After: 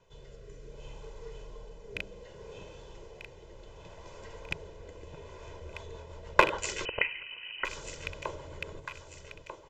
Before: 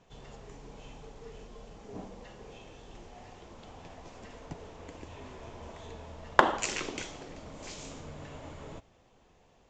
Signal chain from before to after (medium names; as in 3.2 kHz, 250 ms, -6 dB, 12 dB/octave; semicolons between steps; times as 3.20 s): rattle on loud lows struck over -39 dBFS, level -12 dBFS; hum notches 50/100/150 Hz; comb 2 ms, depth 75%; rotary cabinet horn 0.65 Hz, later 7.5 Hz, at 5.25 s; echo whose repeats swap between lows and highs 621 ms, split 1.1 kHz, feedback 65%, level -6.5 dB; 6.85–7.65 s: frequency inversion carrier 3 kHz; trim -1 dB